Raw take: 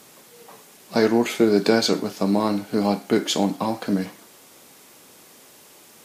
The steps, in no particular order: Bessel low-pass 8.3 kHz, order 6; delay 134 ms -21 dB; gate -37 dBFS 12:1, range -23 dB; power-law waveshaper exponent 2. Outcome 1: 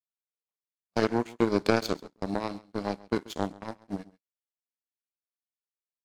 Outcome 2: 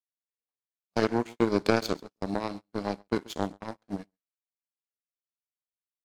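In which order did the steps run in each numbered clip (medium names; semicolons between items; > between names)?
Bessel low-pass > power-law waveshaper > gate > delay; Bessel low-pass > power-law waveshaper > delay > gate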